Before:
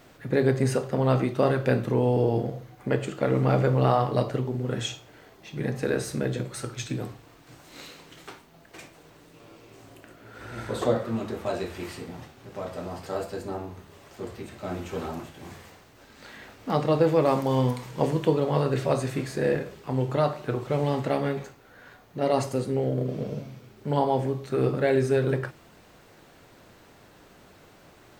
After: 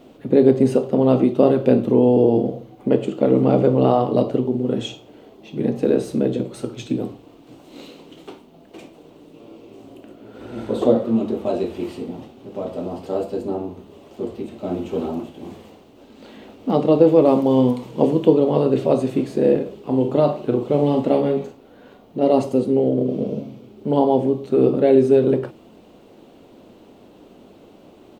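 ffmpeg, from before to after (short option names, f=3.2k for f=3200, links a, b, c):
-filter_complex "[0:a]asettb=1/sr,asplit=3[a][b][c];[a]atrim=end=19.814[d];[b]atrim=start=19.81:end=22.17,asetpts=PTS-STARTPTS,afade=t=in:d=0.004:c=qsin,afade=t=out:st=2.356:d=0.004:c=qsin,asplit=2[e][f];[f]adelay=41,volume=-7dB[g];[e][g]amix=inputs=2:normalize=0,atrim=end_sample=104076[h];[c]atrim=start=22.166[i];[d][h]acrossfade=d=0.004:c1=hsin:c2=qsin[j];[j][i]acrossfade=d=0.004:c1=qsin:c2=hsin,firequalizer=gain_entry='entry(140,0);entry(220,12);entry(1700,-9);entry(2900,3);entry(5100,-5)':delay=0.05:min_phase=1"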